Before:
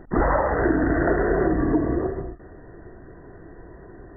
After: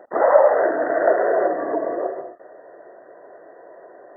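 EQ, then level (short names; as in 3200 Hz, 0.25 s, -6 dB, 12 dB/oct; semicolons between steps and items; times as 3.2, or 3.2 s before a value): resonant high-pass 580 Hz, resonance Q 4.7; -1.0 dB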